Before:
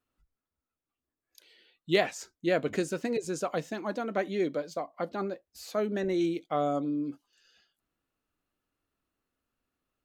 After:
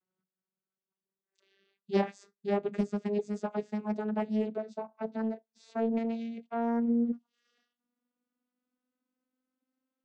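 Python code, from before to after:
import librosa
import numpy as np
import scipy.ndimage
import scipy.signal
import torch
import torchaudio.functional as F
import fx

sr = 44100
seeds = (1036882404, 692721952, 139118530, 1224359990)

y = fx.vocoder_glide(x, sr, note=54, semitones=6)
y = fx.doppler_dist(y, sr, depth_ms=0.44)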